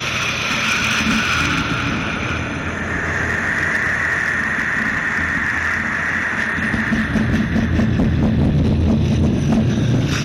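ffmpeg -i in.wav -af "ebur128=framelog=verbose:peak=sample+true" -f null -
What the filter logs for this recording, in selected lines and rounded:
Integrated loudness:
  I:         -17.6 LUFS
  Threshold: -27.6 LUFS
Loudness range:
  LRA:         1.5 LU
  Threshold: -37.9 LUFS
  LRA low:   -18.5 LUFS
  LRA high:  -17.0 LUFS
Sample peak:
  Peak:       -6.0 dBFS
True peak:
  Peak:       -6.0 dBFS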